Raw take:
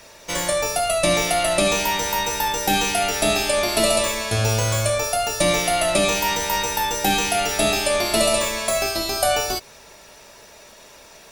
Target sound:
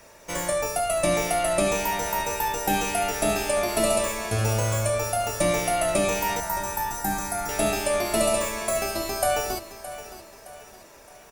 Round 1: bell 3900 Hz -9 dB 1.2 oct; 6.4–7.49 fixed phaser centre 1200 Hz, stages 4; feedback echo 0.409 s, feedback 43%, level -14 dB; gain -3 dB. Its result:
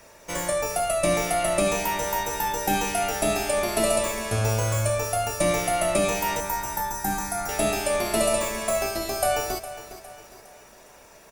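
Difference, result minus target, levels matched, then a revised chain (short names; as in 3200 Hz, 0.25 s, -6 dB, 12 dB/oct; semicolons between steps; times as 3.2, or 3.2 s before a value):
echo 0.208 s early
bell 3900 Hz -9 dB 1.2 oct; 6.4–7.49 fixed phaser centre 1200 Hz, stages 4; feedback echo 0.617 s, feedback 43%, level -14 dB; gain -3 dB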